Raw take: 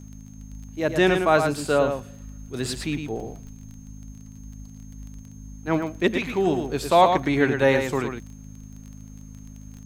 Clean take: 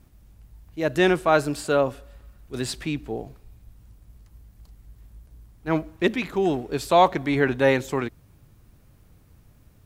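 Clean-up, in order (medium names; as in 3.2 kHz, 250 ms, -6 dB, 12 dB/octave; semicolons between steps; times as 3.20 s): de-click; de-hum 52.2 Hz, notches 5; band-stop 6.4 kHz, Q 30; inverse comb 110 ms -6.5 dB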